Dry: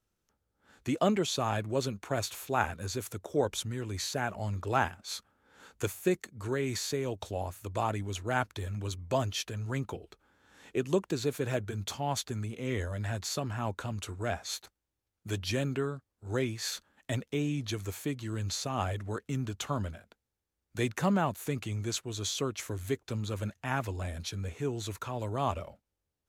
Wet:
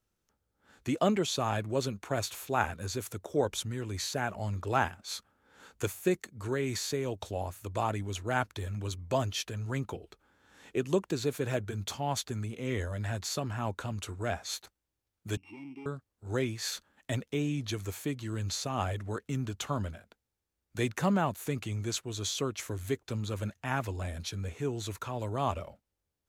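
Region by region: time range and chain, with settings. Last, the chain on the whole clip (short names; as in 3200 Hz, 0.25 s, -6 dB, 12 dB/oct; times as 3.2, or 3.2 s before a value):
15.37–15.86 sample sorter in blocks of 16 samples + overloaded stage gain 30 dB + vowel filter u
whole clip: dry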